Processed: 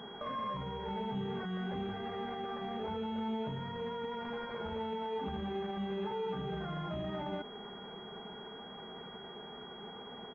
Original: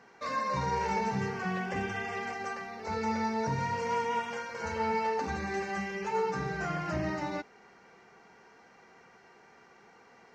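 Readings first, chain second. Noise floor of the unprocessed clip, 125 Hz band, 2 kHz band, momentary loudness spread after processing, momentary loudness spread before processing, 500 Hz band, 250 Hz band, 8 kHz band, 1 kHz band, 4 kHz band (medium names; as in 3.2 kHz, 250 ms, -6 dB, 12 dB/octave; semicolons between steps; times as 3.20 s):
-59 dBFS, -4.0 dB, -12.0 dB, 9 LU, 6 LU, -3.5 dB, -2.0 dB, under -25 dB, -8.0 dB, +2.5 dB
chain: bass shelf 350 Hz +5 dB; peak limiter -40 dBFS, peak gain reduction 22 dB; comb 4.8 ms, depth 42%; class-D stage that switches slowly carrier 3.3 kHz; trim +8.5 dB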